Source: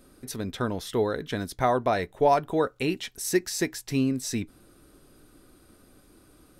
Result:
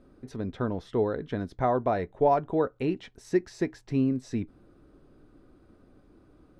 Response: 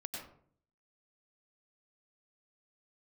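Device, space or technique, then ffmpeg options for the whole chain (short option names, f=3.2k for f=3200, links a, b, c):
through cloth: -af "lowpass=6.5k,highshelf=f=2.1k:g=-17"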